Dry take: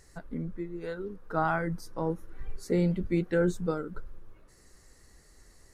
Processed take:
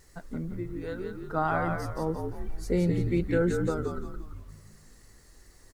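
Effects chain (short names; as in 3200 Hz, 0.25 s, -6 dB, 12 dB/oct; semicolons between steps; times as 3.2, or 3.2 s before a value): frequency-shifting echo 0.173 s, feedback 40%, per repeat -55 Hz, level -4.5 dB; bit-crush 11-bit; wow and flutter 29 cents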